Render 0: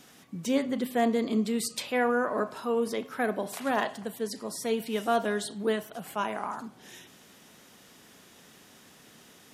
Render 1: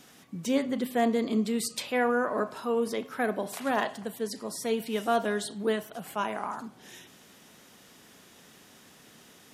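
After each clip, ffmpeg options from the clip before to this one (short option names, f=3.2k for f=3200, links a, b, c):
-af anull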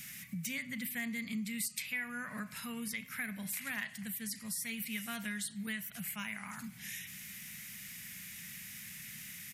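-af "firequalizer=gain_entry='entry(190,0);entry(330,-29);entry(1100,-16);entry(2100,8);entry(3200,-4);entry(13000,10)':delay=0.05:min_phase=1,acompressor=threshold=-48dB:ratio=2.5,volume=6.5dB"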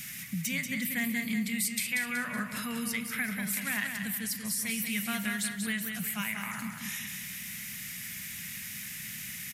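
-af "aecho=1:1:187|374|561|748|935:0.501|0.226|0.101|0.0457|0.0206,volume=6dB"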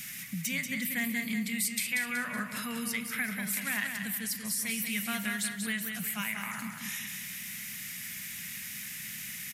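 -af "equalizer=f=70:t=o:w=2.3:g=-6"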